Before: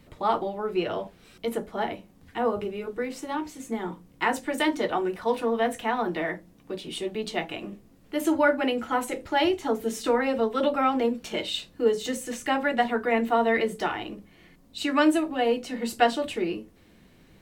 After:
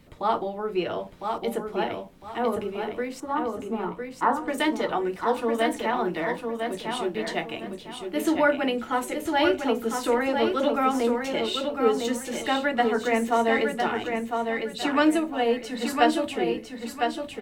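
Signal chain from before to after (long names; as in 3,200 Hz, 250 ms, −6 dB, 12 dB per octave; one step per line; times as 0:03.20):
0:03.20–0:04.48: high shelf with overshoot 1,700 Hz −10.5 dB, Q 3
on a send: repeating echo 1,005 ms, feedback 29%, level −5 dB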